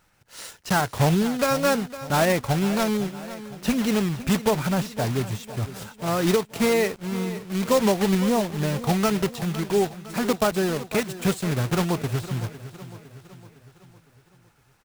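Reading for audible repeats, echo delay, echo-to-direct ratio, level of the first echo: 4, 0.508 s, -13.0 dB, -14.5 dB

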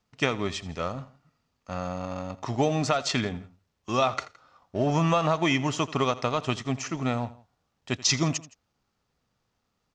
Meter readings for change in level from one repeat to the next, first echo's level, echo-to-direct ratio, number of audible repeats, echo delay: -6.0 dB, -18.5 dB, -17.5 dB, 2, 83 ms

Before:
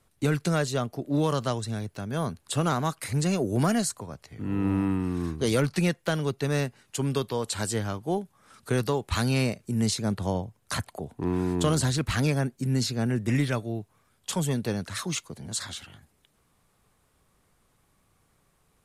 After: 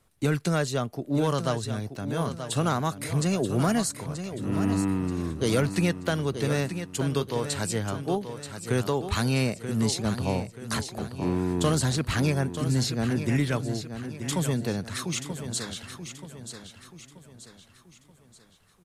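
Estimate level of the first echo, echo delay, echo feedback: -9.5 dB, 0.931 s, 42%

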